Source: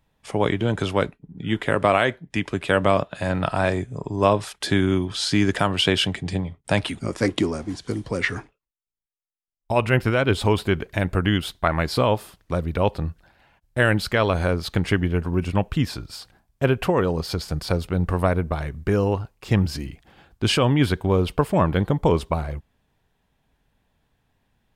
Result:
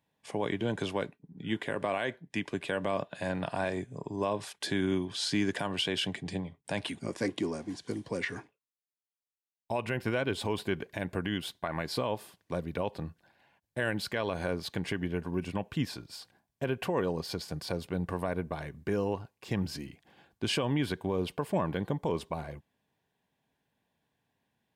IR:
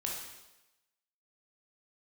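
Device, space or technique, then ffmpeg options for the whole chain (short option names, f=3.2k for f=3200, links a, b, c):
PA system with an anti-feedback notch: -af "highpass=140,asuperstop=centerf=1300:order=4:qfactor=7.5,alimiter=limit=-12dB:level=0:latency=1:release=88,volume=-7.5dB"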